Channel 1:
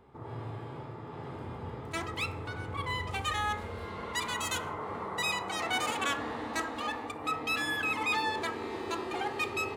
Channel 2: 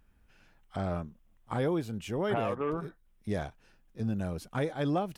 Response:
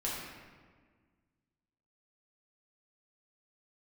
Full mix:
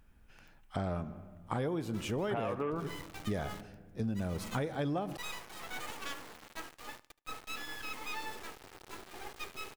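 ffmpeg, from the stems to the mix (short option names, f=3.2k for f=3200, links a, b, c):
-filter_complex "[0:a]agate=range=-33dB:threshold=-30dB:ratio=3:detection=peak,asubboost=boost=3:cutoff=50,acrusher=bits=4:dc=4:mix=0:aa=0.000001,volume=-6dB,asplit=2[a][b];[b]volume=-21dB[c];[1:a]volume=2dB,asplit=3[d][e][f];[e]volume=-17.5dB[g];[f]apad=whole_len=430580[h];[a][h]sidechaincompress=threshold=-31dB:ratio=8:attack=5.8:release=174[i];[2:a]atrim=start_sample=2205[j];[g][j]afir=irnorm=-1:irlink=0[k];[c]aecho=0:1:74|148|222|296|370:1|0.34|0.116|0.0393|0.0134[l];[i][d][k][l]amix=inputs=4:normalize=0,acompressor=threshold=-31dB:ratio=5"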